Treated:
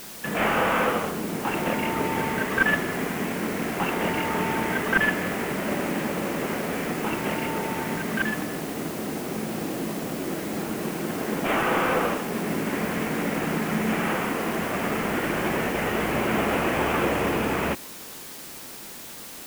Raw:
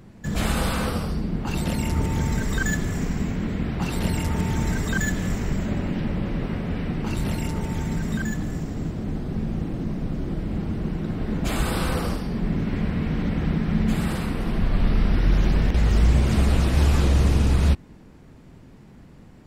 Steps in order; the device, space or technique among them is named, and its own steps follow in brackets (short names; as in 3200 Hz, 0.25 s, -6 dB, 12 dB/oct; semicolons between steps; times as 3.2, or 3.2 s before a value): army field radio (BPF 380–3100 Hz; CVSD 16 kbps; white noise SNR 14 dB); gain +8 dB